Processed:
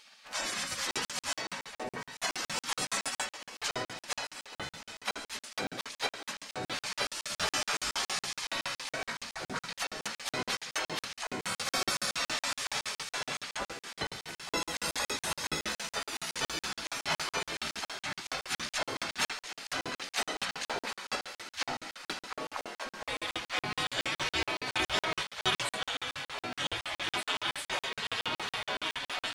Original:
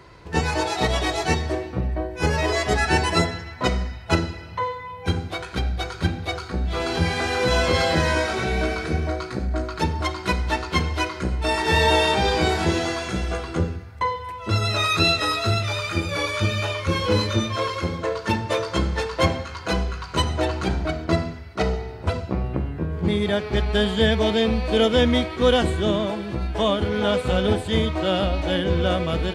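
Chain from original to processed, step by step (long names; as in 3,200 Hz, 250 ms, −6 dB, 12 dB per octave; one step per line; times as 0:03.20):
gate on every frequency bin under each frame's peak −20 dB weak
mains-hum notches 60/120/180/240/300/360 Hz
reversed playback
upward compression, threshold −48 dBFS
reversed playback
pitch-shifted copies added +4 semitones −14 dB
on a send: delay with a high-pass on its return 1,198 ms, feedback 85%, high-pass 1,400 Hz, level −15 dB
on the sum: regular buffer underruns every 0.14 s, samples 2,048, zero, from 0:00.91
level +2 dB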